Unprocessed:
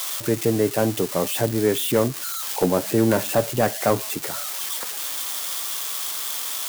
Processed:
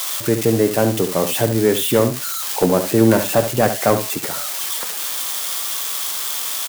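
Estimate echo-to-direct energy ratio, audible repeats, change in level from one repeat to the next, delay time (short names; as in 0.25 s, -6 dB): -9.5 dB, 1, no steady repeat, 71 ms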